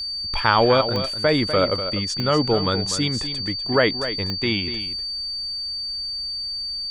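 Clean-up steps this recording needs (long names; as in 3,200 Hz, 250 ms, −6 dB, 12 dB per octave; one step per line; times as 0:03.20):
click removal
notch filter 4,600 Hz, Q 30
echo removal 247 ms −10.5 dB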